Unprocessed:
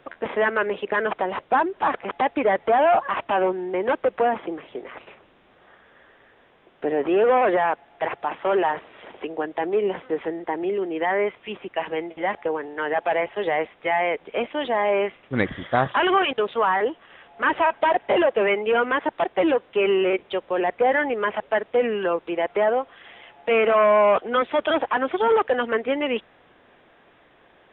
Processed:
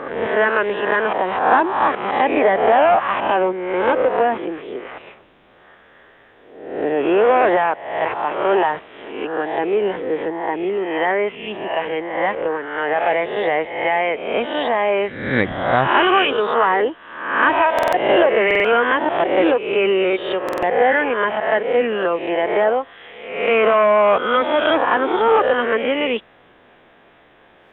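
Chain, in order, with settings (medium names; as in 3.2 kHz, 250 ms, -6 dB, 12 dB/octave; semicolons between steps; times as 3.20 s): reverse spectral sustain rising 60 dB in 0.82 s; buffer glitch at 17.74/18.46/20.44 s, samples 2048, times 3; trim +2.5 dB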